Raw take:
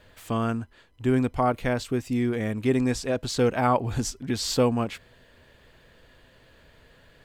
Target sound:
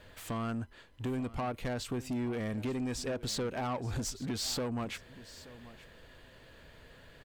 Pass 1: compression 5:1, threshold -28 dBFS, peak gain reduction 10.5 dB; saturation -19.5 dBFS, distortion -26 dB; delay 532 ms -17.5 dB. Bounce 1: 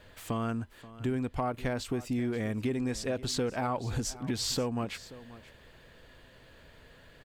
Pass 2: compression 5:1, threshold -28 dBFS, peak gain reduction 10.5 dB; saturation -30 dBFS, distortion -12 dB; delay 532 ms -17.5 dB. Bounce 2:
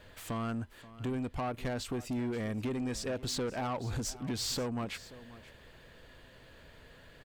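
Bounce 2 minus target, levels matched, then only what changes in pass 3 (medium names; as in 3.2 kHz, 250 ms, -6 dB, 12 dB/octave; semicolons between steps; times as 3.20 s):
echo 346 ms early
change: delay 878 ms -17.5 dB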